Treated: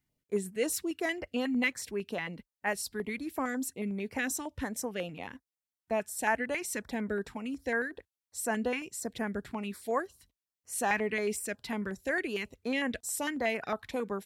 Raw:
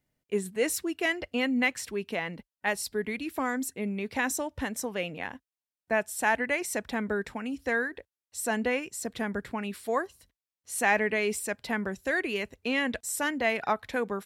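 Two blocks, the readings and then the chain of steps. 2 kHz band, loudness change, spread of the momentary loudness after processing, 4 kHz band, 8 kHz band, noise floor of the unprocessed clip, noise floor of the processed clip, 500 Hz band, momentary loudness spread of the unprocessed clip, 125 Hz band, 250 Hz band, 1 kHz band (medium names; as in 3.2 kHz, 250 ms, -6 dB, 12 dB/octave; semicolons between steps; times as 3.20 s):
-5.0 dB, -3.5 dB, 8 LU, -4.5 dB, -2.0 dB, under -85 dBFS, under -85 dBFS, -3.0 dB, 9 LU, -2.0 dB, -2.5 dB, -4.0 dB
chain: step-sequenced notch 11 Hz 550–3700 Hz; trim -2 dB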